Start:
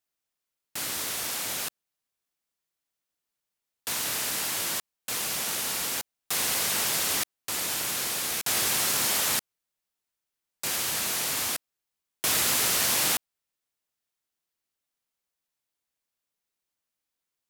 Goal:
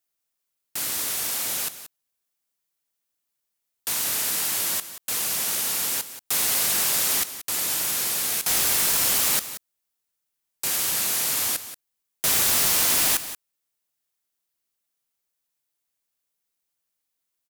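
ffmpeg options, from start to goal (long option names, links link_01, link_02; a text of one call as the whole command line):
ffmpeg -i in.wav -filter_complex "[0:a]highshelf=frequency=7000:gain=7.5,aeval=exprs='(mod(4.73*val(0)+1,2)-1)/4.73':channel_layout=same,asplit=2[link_01][link_02];[link_02]aecho=0:1:180:0.224[link_03];[link_01][link_03]amix=inputs=2:normalize=0" out.wav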